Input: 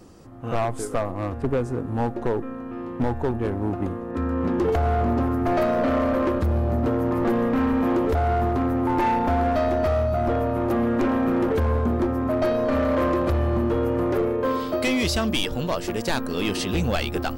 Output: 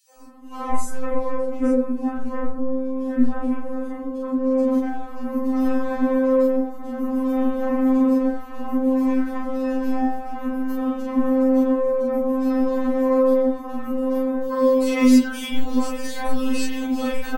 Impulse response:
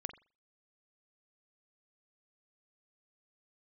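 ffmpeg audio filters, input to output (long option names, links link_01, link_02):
-filter_complex "[0:a]equalizer=frequency=3500:width_type=o:width=1.5:gain=-6,asplit=2[link_01][link_02];[1:a]atrim=start_sample=2205,adelay=36[link_03];[link_02][link_03]afir=irnorm=-1:irlink=0,volume=2.5dB[link_04];[link_01][link_04]amix=inputs=2:normalize=0,acompressor=threshold=-22dB:ratio=3,acrossover=split=560|3000[link_05][link_06][link_07];[link_06]adelay=90[link_08];[link_05]adelay=180[link_09];[link_09][link_08][link_07]amix=inputs=3:normalize=0,afftfilt=real='re*3.46*eq(mod(b,12),0)':imag='im*3.46*eq(mod(b,12),0)':win_size=2048:overlap=0.75,volume=4.5dB"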